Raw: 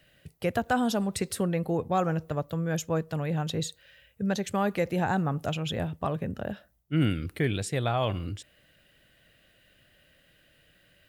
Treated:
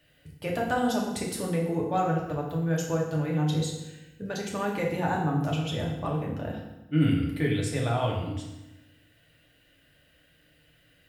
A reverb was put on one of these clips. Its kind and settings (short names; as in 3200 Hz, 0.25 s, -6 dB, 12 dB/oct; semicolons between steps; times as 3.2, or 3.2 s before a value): FDN reverb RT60 1 s, low-frequency decay 1.25×, high-frequency decay 0.85×, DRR -2.5 dB; gain -4.5 dB